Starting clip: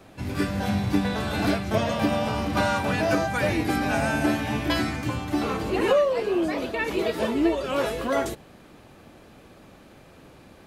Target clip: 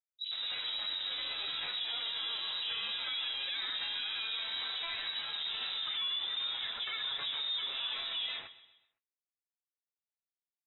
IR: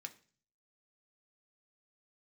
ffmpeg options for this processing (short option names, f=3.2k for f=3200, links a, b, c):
-filter_complex "[0:a]acrusher=bits=4:mix=0:aa=0.5,bandreject=f=50:t=h:w=6,bandreject=f=100:t=h:w=6,bandreject=f=150:t=h:w=6,bandreject=f=200:t=h:w=6,bandreject=f=250:t=h:w=6,bandreject=f=300:t=h:w=6,acrossover=split=290|1300[a][b][c];[b]adelay=60[d];[c]adelay=130[e];[a][d][e]amix=inputs=3:normalize=0,lowpass=f=3.4k:t=q:w=0.5098,lowpass=f=3.4k:t=q:w=0.6013,lowpass=f=3.4k:t=q:w=0.9,lowpass=f=3.4k:t=q:w=2.563,afreqshift=-4000,flanger=delay=7:depth=6:regen=56:speed=0.27:shape=sinusoidal,asplit=2[f][g];[g]aecho=0:1:128|256|384|512:0.126|0.0579|0.0266|0.0123[h];[f][h]amix=inputs=2:normalize=0,alimiter=level_in=2dB:limit=-24dB:level=0:latency=1:release=40,volume=-2dB,volume=-2.5dB"